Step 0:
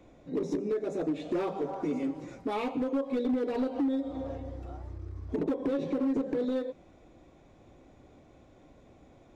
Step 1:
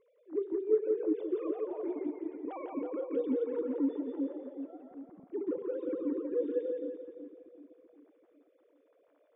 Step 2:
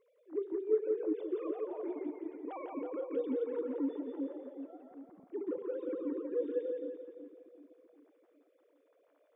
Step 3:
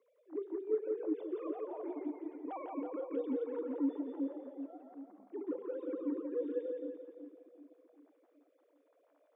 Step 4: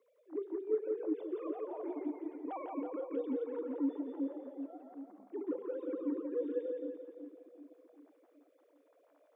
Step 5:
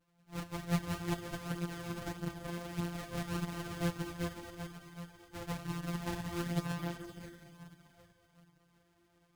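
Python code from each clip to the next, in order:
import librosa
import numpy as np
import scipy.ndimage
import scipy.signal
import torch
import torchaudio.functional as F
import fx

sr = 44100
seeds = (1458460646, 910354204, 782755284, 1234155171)

y1 = fx.sine_speech(x, sr)
y1 = fx.high_shelf(y1, sr, hz=2200.0, db=-9.0)
y1 = fx.echo_split(y1, sr, split_hz=340.0, low_ms=382, high_ms=171, feedback_pct=52, wet_db=-4)
y1 = y1 * librosa.db_to_amplitude(-4.0)
y2 = fx.low_shelf(y1, sr, hz=300.0, db=-7.5)
y3 = scipy.signal.sosfilt(scipy.signal.cheby1(6, 6, 200.0, 'highpass', fs=sr, output='sos'), y2)
y3 = y3 * librosa.db_to_amplitude(2.0)
y4 = fx.rider(y3, sr, range_db=3, speed_s=2.0)
y5 = np.r_[np.sort(y4[:len(y4) // 256 * 256].reshape(-1, 256), axis=1).ravel(), y4[len(y4) // 256 * 256:]]
y5 = fx.echo_feedback(y5, sr, ms=218, feedback_pct=57, wet_db=-12.0)
y5 = fx.chorus_voices(y5, sr, voices=4, hz=0.54, base_ms=10, depth_ms=3.5, mix_pct=60)
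y5 = y5 * librosa.db_to_amplitude(2.0)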